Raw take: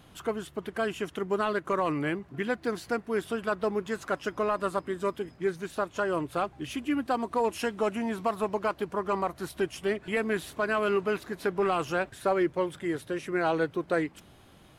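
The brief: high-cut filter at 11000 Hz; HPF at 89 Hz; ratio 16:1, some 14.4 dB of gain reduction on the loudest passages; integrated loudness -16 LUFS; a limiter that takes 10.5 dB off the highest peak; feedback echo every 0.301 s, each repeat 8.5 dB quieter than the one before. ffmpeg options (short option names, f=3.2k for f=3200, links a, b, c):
-af "highpass=89,lowpass=11k,acompressor=threshold=-37dB:ratio=16,alimiter=level_in=12dB:limit=-24dB:level=0:latency=1,volume=-12dB,aecho=1:1:301|602|903|1204:0.376|0.143|0.0543|0.0206,volume=29.5dB"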